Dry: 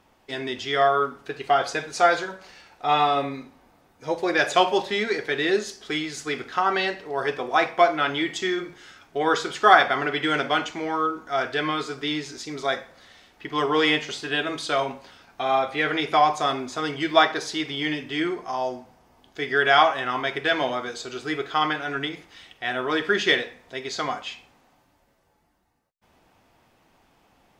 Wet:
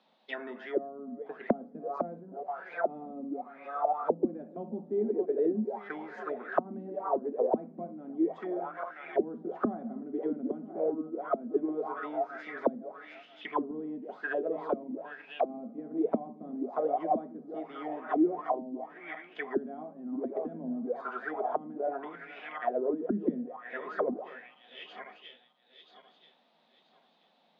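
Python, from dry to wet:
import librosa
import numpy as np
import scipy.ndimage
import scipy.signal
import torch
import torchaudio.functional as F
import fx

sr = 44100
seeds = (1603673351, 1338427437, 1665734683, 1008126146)

y = fx.reverse_delay_fb(x, sr, ms=491, feedback_pct=54, wet_db=-12.5)
y = scipy.signal.sosfilt(scipy.signal.cheby1(6, 9, 160.0, 'highpass', fs=sr, output='sos'), y)
y = fx.envelope_lowpass(y, sr, base_hz=230.0, top_hz=4000.0, q=7.3, full_db=-25.5, direction='down')
y = y * 10.0 ** (-5.0 / 20.0)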